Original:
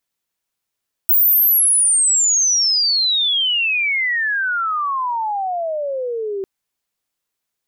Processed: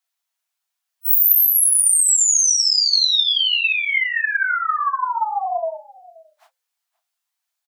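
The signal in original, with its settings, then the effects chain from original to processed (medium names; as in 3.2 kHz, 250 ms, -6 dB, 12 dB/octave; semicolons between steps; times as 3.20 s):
sweep logarithmic 16 kHz -> 380 Hz -10 dBFS -> -21 dBFS 5.35 s
phase randomisation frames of 100 ms; Chebyshev high-pass 640 Hz, order 10; delay 528 ms -22 dB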